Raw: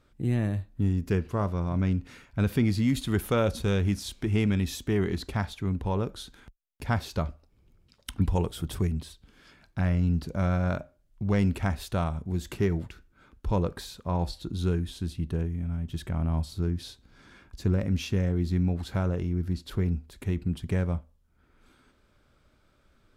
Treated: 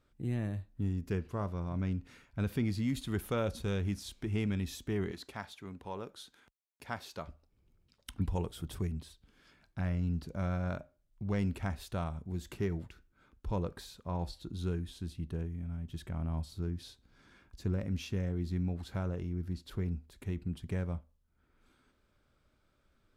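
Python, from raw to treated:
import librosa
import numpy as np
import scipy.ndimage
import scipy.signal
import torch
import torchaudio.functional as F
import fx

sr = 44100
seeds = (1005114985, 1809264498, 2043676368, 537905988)

y = fx.highpass(x, sr, hz=450.0, slope=6, at=(5.11, 7.28))
y = y * 10.0 ** (-8.0 / 20.0)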